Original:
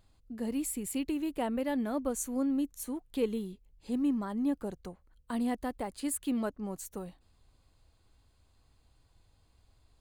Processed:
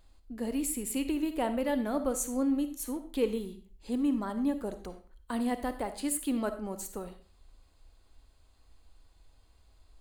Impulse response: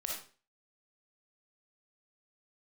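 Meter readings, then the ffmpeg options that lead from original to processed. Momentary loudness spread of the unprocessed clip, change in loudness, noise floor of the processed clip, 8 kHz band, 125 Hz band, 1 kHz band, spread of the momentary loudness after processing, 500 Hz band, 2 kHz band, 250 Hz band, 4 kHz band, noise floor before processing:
11 LU, +1.5 dB, -63 dBFS, +3.0 dB, n/a, +3.0 dB, 11 LU, +3.0 dB, +3.0 dB, +1.0 dB, +3.0 dB, -68 dBFS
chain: -filter_complex "[0:a]equalizer=f=130:w=1.6:g=-14,asplit=2[a][b];[1:a]atrim=start_sample=2205,lowshelf=f=200:g=8.5[c];[b][c]afir=irnorm=-1:irlink=0,volume=-6.5dB[d];[a][d]amix=inputs=2:normalize=0"

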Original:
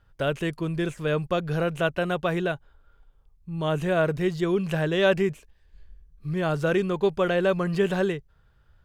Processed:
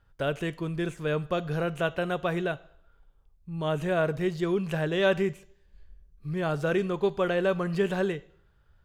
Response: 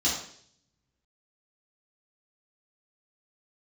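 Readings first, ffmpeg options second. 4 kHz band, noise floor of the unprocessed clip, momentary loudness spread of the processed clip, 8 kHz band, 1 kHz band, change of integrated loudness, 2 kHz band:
-3.5 dB, -61 dBFS, 8 LU, n/a, -2.5 dB, -3.0 dB, -3.0 dB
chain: -filter_complex "[0:a]asplit=2[a][b];[1:a]atrim=start_sample=2205,lowshelf=f=320:g=-9.5[c];[b][c]afir=irnorm=-1:irlink=0,volume=-24.5dB[d];[a][d]amix=inputs=2:normalize=0,volume=-3dB"

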